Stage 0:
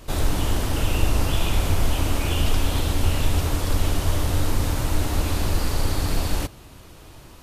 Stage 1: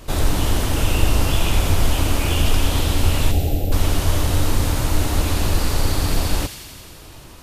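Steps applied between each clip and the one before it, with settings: spectral selection erased 3.32–3.72 s, 860–12000 Hz; feedback echo behind a high-pass 87 ms, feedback 77%, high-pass 2.3 kHz, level -7.5 dB; trim +3.5 dB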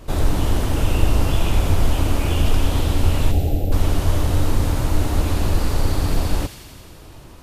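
tilt shelf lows +3.5 dB, about 1.5 kHz; trim -3 dB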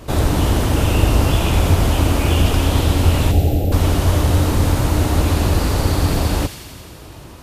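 high-pass 47 Hz; trim +5.5 dB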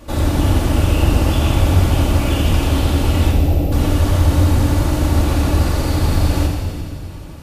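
simulated room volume 3400 m³, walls mixed, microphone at 2.4 m; trim -4.5 dB

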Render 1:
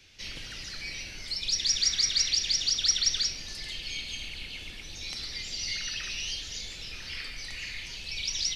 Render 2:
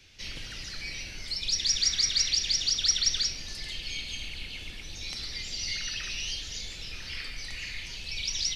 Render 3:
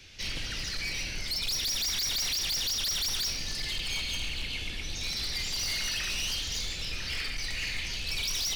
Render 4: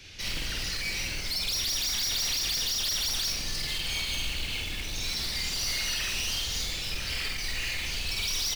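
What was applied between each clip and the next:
bass shelf 140 Hz +3.5 dB
in parallel at -2.5 dB: peak limiter -24.5 dBFS, peak gain reduction 11 dB; on the sum: overload inside the chain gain 28.5 dB; reverberation RT60 0.80 s, pre-delay 72 ms, DRR 12.5 dB
in parallel at -10 dB: integer overflow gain 32 dB; on the sum: doubling 49 ms -3 dB

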